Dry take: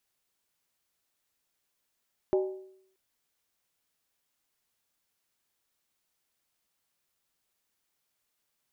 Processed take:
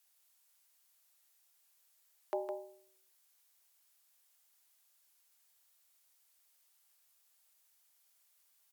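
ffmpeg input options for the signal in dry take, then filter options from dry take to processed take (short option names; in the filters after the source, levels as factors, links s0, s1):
-f lavfi -i "aevalsrc='0.0944*pow(10,-3*t/0.7)*sin(2*PI*379*t)+0.0376*pow(10,-3*t/0.554)*sin(2*PI*604.1*t)+0.015*pow(10,-3*t/0.479)*sin(2*PI*809.5*t)+0.00596*pow(10,-3*t/0.462)*sin(2*PI*870.2*t)+0.00237*pow(10,-3*t/0.43)*sin(2*PI*1005.5*t)':d=0.63:s=44100"
-filter_complex "[0:a]highpass=f=550:w=0.5412,highpass=f=550:w=1.3066,aemphasis=mode=production:type=cd,asplit=2[s0][s1];[s1]aecho=0:1:159:0.501[s2];[s0][s2]amix=inputs=2:normalize=0"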